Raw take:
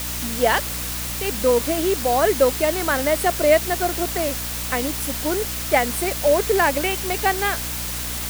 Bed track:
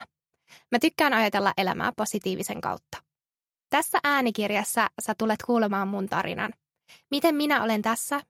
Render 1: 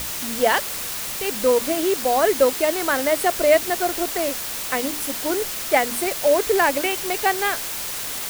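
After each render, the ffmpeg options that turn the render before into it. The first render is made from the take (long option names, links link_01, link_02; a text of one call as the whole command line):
ffmpeg -i in.wav -af "bandreject=frequency=60:width_type=h:width=6,bandreject=frequency=120:width_type=h:width=6,bandreject=frequency=180:width_type=h:width=6,bandreject=frequency=240:width_type=h:width=6,bandreject=frequency=300:width_type=h:width=6" out.wav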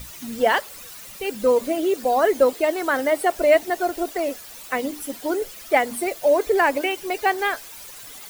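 ffmpeg -i in.wav -af "afftdn=noise_reduction=14:noise_floor=-29" out.wav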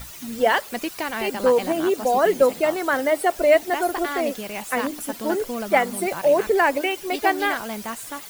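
ffmpeg -i in.wav -i bed.wav -filter_complex "[1:a]volume=-6.5dB[link_01];[0:a][link_01]amix=inputs=2:normalize=0" out.wav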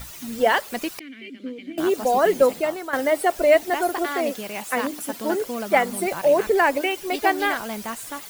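ffmpeg -i in.wav -filter_complex "[0:a]asettb=1/sr,asplit=3[link_01][link_02][link_03];[link_01]atrim=end=0.994[link_04];[link_02]atrim=start=0.99:end=1.78,asetpts=PTS-STARTPTS,afade=type=in:duration=0.004:curve=qsin,afade=type=out:start_time=0.786:duration=0.004:curve=qsin,asplit=3[link_05][link_06][link_07];[link_05]bandpass=frequency=270:width_type=q:width=8,volume=0dB[link_08];[link_06]bandpass=frequency=2290:width_type=q:width=8,volume=-6dB[link_09];[link_07]bandpass=frequency=3010:width_type=q:width=8,volume=-9dB[link_10];[link_08][link_09][link_10]amix=inputs=3:normalize=0[link_11];[link_03]atrim=start=1.776[link_12];[link_04][link_11]acrossfade=duration=0.004:curve1=hsin:curve2=qsin[link_13];[link_13][link_12]acrossfade=duration=0.004:curve1=qsin:curve2=hsin,asettb=1/sr,asplit=3[link_14][link_15][link_16];[link_14]atrim=end=3.894[link_17];[link_15]atrim=start=3.89:end=5.79,asetpts=PTS-STARTPTS,afade=type=in:duration=0.004:curve=qsin,afade=type=out:start_time=1.896:duration=0.004:curve=qsin,highpass=frequency=110:poles=1[link_18];[link_16]atrim=start=5.786[link_19];[link_17][link_18]acrossfade=duration=0.004:curve1=hsin:curve2=qsin[link_20];[link_20][link_19]acrossfade=duration=0.004:curve1=qsin:curve2=hsin,asplit=2[link_21][link_22];[link_21]atrim=end=2.93,asetpts=PTS-STARTPTS,afade=type=out:start_time=2.47:duration=0.46:silence=0.281838[link_23];[link_22]atrim=start=2.93,asetpts=PTS-STARTPTS,afade=type=in:duration=0.004:curve=hsin:silence=0.281838[link_24];[link_23][link_24]concat=n=2:v=0:a=1" out.wav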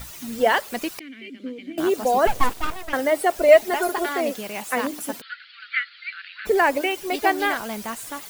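ffmpeg -i in.wav -filter_complex "[0:a]asettb=1/sr,asplit=3[link_01][link_02][link_03];[link_01]atrim=end=2.274[link_04];[link_02]atrim=start=2.27:end=2.93,asetpts=PTS-STARTPTS,afade=type=in:duration=0.004:curve=qsin,afade=type=out:start_time=0.656:duration=0.004:curve=qsin,aeval=exprs='abs(val(0))':channel_layout=same[link_05];[link_03]atrim=start=2.926[link_06];[link_04][link_05]acrossfade=duration=0.004:curve1=hsin:curve2=qsin[link_07];[link_07][link_06]acrossfade=duration=0.004:curve1=qsin:curve2=hsin,asettb=1/sr,asplit=3[link_08][link_09][link_10];[link_08]atrim=end=3.484[link_11];[link_09]atrim=start=3.48:end=4.09,asetpts=PTS-STARTPTS,afade=type=in:duration=0.004:curve=qsin,afade=type=out:start_time=0.606:duration=0.004:curve=qsin,aecho=1:1:4.8:0.65,atrim=end_sample=26901[link_12];[link_10]atrim=start=4.086[link_13];[link_11][link_12]acrossfade=duration=0.004:curve1=hsin:curve2=qsin[link_14];[link_14][link_13]acrossfade=duration=0.004:curve1=qsin:curve2=hsin,asplit=3[link_15][link_16][link_17];[link_15]afade=type=out:start_time=5.2:duration=0.02[link_18];[link_16]asuperpass=centerf=2500:order=20:qfactor=0.77,afade=type=in:start_time=5.2:duration=0.02,afade=type=out:start_time=6.45:duration=0.02[link_19];[link_17]afade=type=in:start_time=6.45:duration=0.02[link_20];[link_18][link_19][link_20]amix=inputs=3:normalize=0" out.wav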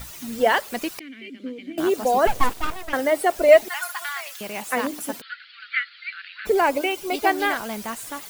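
ffmpeg -i in.wav -filter_complex "[0:a]asettb=1/sr,asplit=3[link_01][link_02][link_03];[link_01]atrim=end=3.684[link_04];[link_02]atrim=start=3.68:end=4.41,asetpts=PTS-STARTPTS,afade=type=in:duration=0.004:curve=qsin,afade=type=out:start_time=0.726:duration=0.004:curve=qsin,highpass=frequency=1100:width=0.5412,highpass=frequency=1100:width=1.3066[link_05];[link_03]atrim=start=4.406[link_06];[link_04][link_05]acrossfade=duration=0.004:curve1=hsin:curve2=qsin[link_07];[link_07][link_06]acrossfade=duration=0.004:curve1=qsin:curve2=hsin,asettb=1/sr,asplit=3[link_08][link_09][link_10];[link_08]atrim=end=6.514[link_11];[link_09]atrim=start=6.51:end=7.27,asetpts=PTS-STARTPTS,afade=type=in:duration=0.004:curve=qsin,afade=type=out:start_time=0.756:duration=0.004:curve=qsin,bandreject=frequency=1800:width=5.5[link_12];[link_10]atrim=start=7.266[link_13];[link_11][link_12]acrossfade=duration=0.004:curve1=hsin:curve2=qsin[link_14];[link_14][link_13]acrossfade=duration=0.004:curve1=qsin:curve2=hsin" out.wav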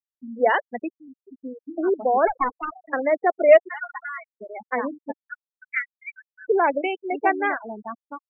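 ffmpeg -i in.wav -filter_complex "[0:a]acrossover=split=190 2900:gain=0.0891 1 0.224[link_01][link_02][link_03];[link_01][link_02][link_03]amix=inputs=3:normalize=0,afftfilt=real='re*gte(hypot(re,im),0.1)':imag='im*gte(hypot(re,im),0.1)':win_size=1024:overlap=0.75" out.wav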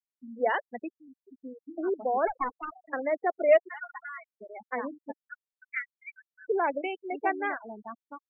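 ffmpeg -i in.wav -af "volume=-7.5dB" out.wav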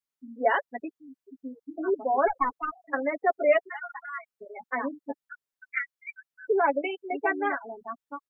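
ffmpeg -i in.wav -af "equalizer=frequency=1300:width_type=o:width=0.77:gain=2.5,aecho=1:1:7.2:0.89" out.wav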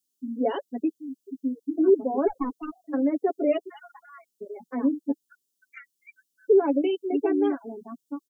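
ffmpeg -i in.wav -filter_complex "[0:a]acrossover=split=2800[link_01][link_02];[link_02]acompressor=threshold=-50dB:ratio=4:attack=1:release=60[link_03];[link_01][link_03]amix=inputs=2:normalize=0,firequalizer=gain_entry='entry(130,0);entry(180,10);entry(320,12);entry(630,-5);entry(1400,-12);entry(2000,-17);entry(2900,5);entry(6300,13)':delay=0.05:min_phase=1" out.wav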